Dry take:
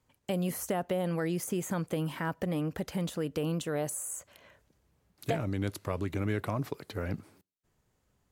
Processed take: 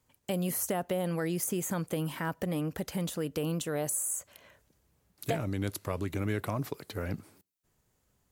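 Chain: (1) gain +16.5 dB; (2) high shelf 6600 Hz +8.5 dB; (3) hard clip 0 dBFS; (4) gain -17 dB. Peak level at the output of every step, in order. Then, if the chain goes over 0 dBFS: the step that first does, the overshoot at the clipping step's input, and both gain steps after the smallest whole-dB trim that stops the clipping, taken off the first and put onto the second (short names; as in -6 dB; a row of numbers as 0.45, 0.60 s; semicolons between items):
-2.0, -1.5, -1.5, -18.5 dBFS; no overload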